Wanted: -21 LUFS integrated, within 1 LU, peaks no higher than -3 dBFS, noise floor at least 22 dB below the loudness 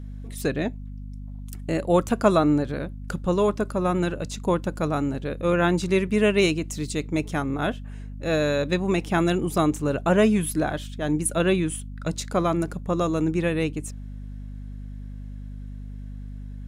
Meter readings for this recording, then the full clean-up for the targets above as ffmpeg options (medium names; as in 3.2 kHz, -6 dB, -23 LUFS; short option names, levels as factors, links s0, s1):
hum 50 Hz; highest harmonic 250 Hz; hum level -33 dBFS; loudness -24.5 LUFS; peak level -4.5 dBFS; loudness target -21.0 LUFS
-> -af "bandreject=f=50:t=h:w=6,bandreject=f=100:t=h:w=6,bandreject=f=150:t=h:w=6,bandreject=f=200:t=h:w=6,bandreject=f=250:t=h:w=6"
-af "volume=1.5,alimiter=limit=0.708:level=0:latency=1"